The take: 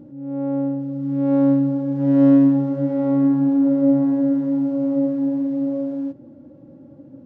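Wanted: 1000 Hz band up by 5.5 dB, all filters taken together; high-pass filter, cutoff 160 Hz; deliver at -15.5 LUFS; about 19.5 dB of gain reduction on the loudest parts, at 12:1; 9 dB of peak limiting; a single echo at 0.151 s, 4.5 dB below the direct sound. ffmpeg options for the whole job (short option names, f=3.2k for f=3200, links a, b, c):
-af "highpass=160,equalizer=f=1k:t=o:g=7,acompressor=threshold=-30dB:ratio=12,alimiter=level_in=9dB:limit=-24dB:level=0:latency=1,volume=-9dB,aecho=1:1:151:0.596,volume=22.5dB"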